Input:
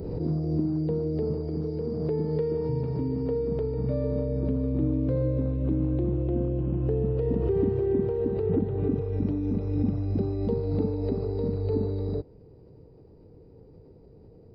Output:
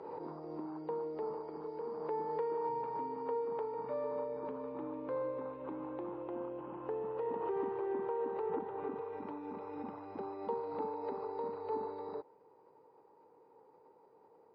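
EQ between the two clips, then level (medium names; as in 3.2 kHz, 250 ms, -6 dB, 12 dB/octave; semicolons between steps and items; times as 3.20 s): ladder band-pass 970 Hz, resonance 65%; peaking EQ 700 Hz -12 dB 0.44 oct; +15.0 dB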